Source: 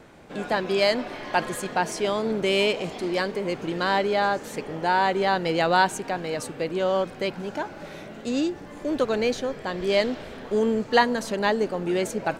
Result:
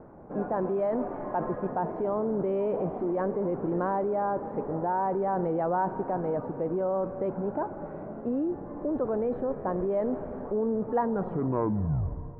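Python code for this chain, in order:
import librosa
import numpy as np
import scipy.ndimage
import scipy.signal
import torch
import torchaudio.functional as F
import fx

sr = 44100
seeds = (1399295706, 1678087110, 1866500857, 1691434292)

p1 = fx.tape_stop_end(x, sr, length_s=1.39)
p2 = scipy.signal.sosfilt(scipy.signal.butter(4, 1100.0, 'lowpass', fs=sr, output='sos'), p1)
p3 = fx.rev_schroeder(p2, sr, rt60_s=3.6, comb_ms=31, drr_db=18.5)
p4 = fx.over_compress(p3, sr, threshold_db=-29.0, ratio=-1.0)
p5 = p3 + (p4 * librosa.db_to_amplitude(2.0))
y = p5 * librosa.db_to_amplitude(-8.0)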